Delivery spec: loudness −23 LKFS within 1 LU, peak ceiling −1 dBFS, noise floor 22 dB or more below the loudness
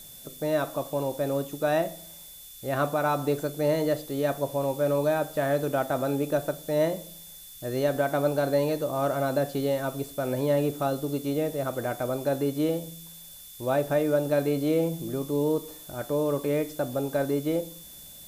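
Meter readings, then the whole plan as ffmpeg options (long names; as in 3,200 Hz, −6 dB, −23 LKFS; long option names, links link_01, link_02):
interfering tone 3,500 Hz; level of the tone −52 dBFS; background noise floor −46 dBFS; target noise floor −50 dBFS; integrated loudness −27.5 LKFS; sample peak −14.0 dBFS; target loudness −23.0 LKFS
→ -af "bandreject=frequency=3500:width=30"
-af "afftdn=noise_reduction=6:noise_floor=-46"
-af "volume=4.5dB"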